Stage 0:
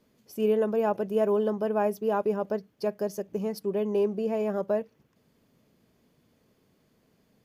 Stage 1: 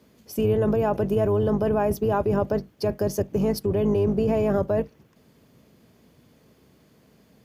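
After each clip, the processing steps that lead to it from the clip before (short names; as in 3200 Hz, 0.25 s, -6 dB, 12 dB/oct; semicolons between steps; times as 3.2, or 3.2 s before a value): octaver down 2 oct, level +2 dB; HPF 81 Hz 24 dB/oct; in parallel at +0.5 dB: negative-ratio compressor -29 dBFS, ratio -0.5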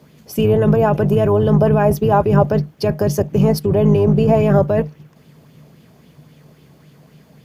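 bell 150 Hz +15 dB 0.25 oct; LFO bell 3.7 Hz 670–3300 Hz +7 dB; gain +6 dB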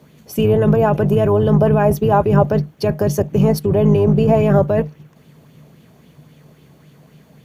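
notch 5000 Hz, Q 10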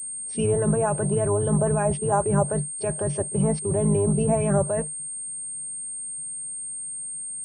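pre-echo 30 ms -19 dB; spectral noise reduction 7 dB; pulse-width modulation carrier 8600 Hz; gain -8 dB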